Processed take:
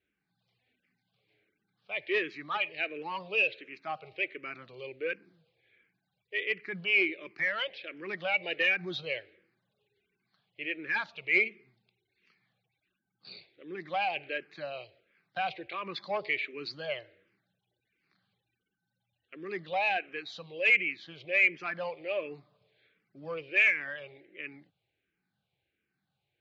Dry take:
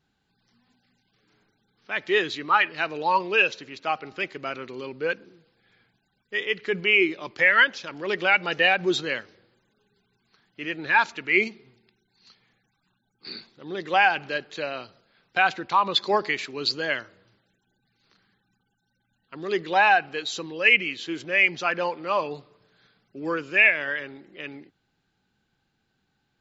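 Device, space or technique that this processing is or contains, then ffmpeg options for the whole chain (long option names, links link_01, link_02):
barber-pole phaser into a guitar amplifier: -filter_complex "[0:a]asplit=2[link_01][link_02];[link_02]afreqshift=-1.4[link_03];[link_01][link_03]amix=inputs=2:normalize=1,asoftclip=type=tanh:threshold=-17.5dB,highpass=81,equalizer=frequency=240:width_type=q:width=4:gain=-9,equalizer=frequency=590:width_type=q:width=4:gain=4,equalizer=frequency=940:width_type=q:width=4:gain=-9,equalizer=frequency=1400:width_type=q:width=4:gain=-5,equalizer=frequency=2300:width_type=q:width=4:gain=8,lowpass=frequency=4000:width=0.5412,lowpass=frequency=4000:width=1.3066,volume=-5dB"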